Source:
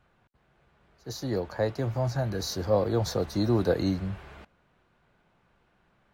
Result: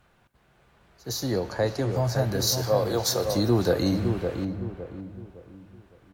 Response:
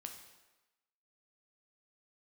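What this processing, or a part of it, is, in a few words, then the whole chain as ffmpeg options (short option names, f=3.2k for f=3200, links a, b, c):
ducked reverb: -filter_complex "[0:a]aemphasis=mode=production:type=cd,asettb=1/sr,asplit=3[a][b][c];[a]atrim=end=1.314[d];[b]atrim=start=1.31:end=1.96,asetpts=PTS-STARTPTS,afade=t=in:d=0.004:c=qsin,afade=t=out:st=0.646:d=0.004:c=qsin,lowpass=f=11k:w=0.5412,lowpass=f=11k:w=1.3066[e];[c]atrim=start=1.956[f];[d][e]acrossfade=d=0.004:c1=hsin:c2=qsin[g];[g][f]acrossfade=d=0.004:c1=qsin:c2=hsin,asettb=1/sr,asplit=3[h][i][j];[h]atrim=end=2.474[k];[i]atrim=start=2.47:end=3.25,asetpts=PTS-STARTPTS,afade=t=in:d=0.004:c=qsin,afade=t=out:st=0.776:d=0.004:c=qsin,bass=f=250:g=-14,treble=f=4k:g=4[l];[j]atrim=start=3.246[m];[k][l]acrossfade=d=0.004:c1=hsin:c2=qsin[n];[n][m]acrossfade=d=0.004:c1=qsin:c2=hsin,asplit=3[o][p][q];[1:a]atrim=start_sample=2205[r];[p][r]afir=irnorm=-1:irlink=0[s];[q]apad=whole_len=270635[t];[s][t]sidechaincompress=threshold=-29dB:ratio=8:attack=43:release=165,volume=0.5dB[u];[o][u]amix=inputs=2:normalize=0,asplit=2[v][w];[w]adelay=560,lowpass=f=1k:p=1,volume=-5dB,asplit=2[x][y];[y]adelay=560,lowpass=f=1k:p=1,volume=0.38,asplit=2[z][aa];[aa]adelay=560,lowpass=f=1k:p=1,volume=0.38,asplit=2[ab][ac];[ac]adelay=560,lowpass=f=1k:p=1,volume=0.38,asplit=2[ad][ae];[ae]adelay=560,lowpass=f=1k:p=1,volume=0.38[af];[v][x][z][ab][ad][af]amix=inputs=6:normalize=0"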